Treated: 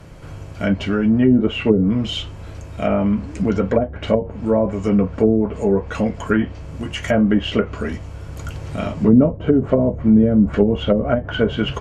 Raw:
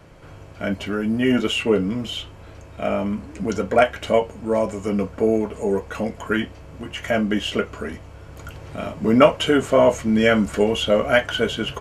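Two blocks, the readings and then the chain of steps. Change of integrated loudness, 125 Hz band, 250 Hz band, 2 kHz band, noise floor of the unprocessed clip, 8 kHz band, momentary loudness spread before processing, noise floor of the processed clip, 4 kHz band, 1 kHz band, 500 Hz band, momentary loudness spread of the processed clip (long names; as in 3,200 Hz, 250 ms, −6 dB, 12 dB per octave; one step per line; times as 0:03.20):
+2.5 dB, +8.5 dB, +6.0 dB, −4.0 dB, −42 dBFS, can't be measured, 15 LU, −35 dBFS, −2.5 dB, −3.5 dB, 0.0 dB, 16 LU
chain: treble cut that deepens with the level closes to 350 Hz, closed at −13 dBFS
bass and treble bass +6 dB, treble +4 dB
level +3 dB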